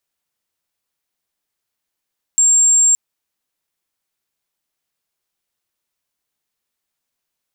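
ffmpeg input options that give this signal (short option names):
-f lavfi -i "aevalsrc='0.355*sin(2*PI*7440*t)':d=0.57:s=44100"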